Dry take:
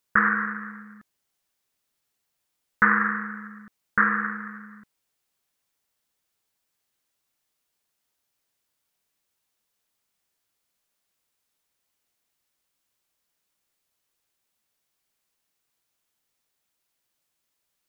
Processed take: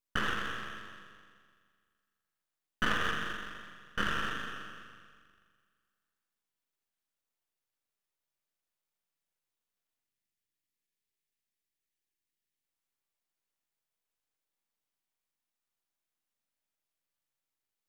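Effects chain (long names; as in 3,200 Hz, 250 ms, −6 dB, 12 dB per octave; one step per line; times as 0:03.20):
time-frequency box erased 0:10.02–0:12.63, 440–1,600 Hz
spring reverb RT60 1.9 s, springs 39 ms, chirp 50 ms, DRR −0.5 dB
half-wave rectification
level −9 dB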